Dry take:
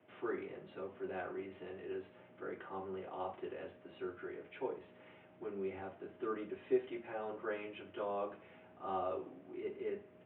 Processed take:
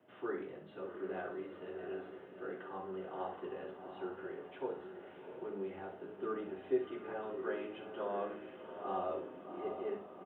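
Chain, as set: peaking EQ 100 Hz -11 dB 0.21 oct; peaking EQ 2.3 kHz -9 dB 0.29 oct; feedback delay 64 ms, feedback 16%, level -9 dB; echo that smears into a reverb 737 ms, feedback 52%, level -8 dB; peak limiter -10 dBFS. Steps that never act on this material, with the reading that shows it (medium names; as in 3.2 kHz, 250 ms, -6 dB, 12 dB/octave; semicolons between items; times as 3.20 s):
peak limiter -10 dBFS: peak at its input -22.0 dBFS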